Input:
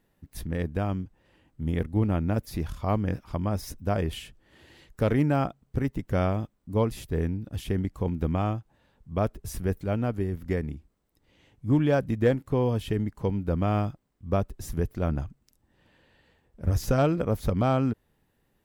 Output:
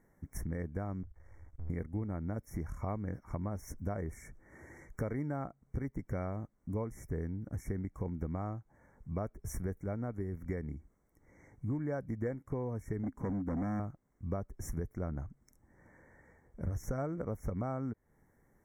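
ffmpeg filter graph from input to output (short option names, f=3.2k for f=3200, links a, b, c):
-filter_complex "[0:a]asettb=1/sr,asplit=3[a][b][c];[a]atrim=end=1.034[d];[b]atrim=start=1.03:end=1.7,asetpts=PTS-STARTPTS,afade=t=in:d=0.004:c=qsin,afade=t=out:st=0.666:d=0.004:c=qsin,aeval=exprs='max(val(0),0)':c=same,acompressor=threshold=-50dB:ratio=4:attack=3.2:release=140:knee=1:detection=peak,lowshelf=f=120:t=q:w=3:g=12[e];[c]atrim=start=1.696[f];[d][e]acrossfade=d=0.004:c1=hsin:c2=qsin[g];[g][f]acrossfade=d=0.004:c1=qsin:c2=hsin,asettb=1/sr,asplit=3[h][i][j];[h]atrim=end=13.034[k];[i]atrim=start=13.03:end=13.8,asetpts=PTS-STARTPTS,afade=t=in:d=0.004:c=qsin,afade=t=out:st=0.766:d=0.004:c=qsin,equalizer=f=260:w=2.6:g=13.5,asoftclip=type=hard:threshold=-22.5dB[l];[j]atrim=start=13.796[m];[k][l]acrossfade=d=0.004:c1=hsin:c2=qsin[n];[n][m]acrossfade=d=0.004:c1=qsin:c2=hsin,afftfilt=real='re*(1-between(b*sr/4096,2300,5400))':imag='im*(1-between(b*sr/4096,2300,5400))':win_size=4096:overlap=0.75,highshelf=f=8.6k:g=-7.5,acompressor=threshold=-38dB:ratio=4,volume=2dB"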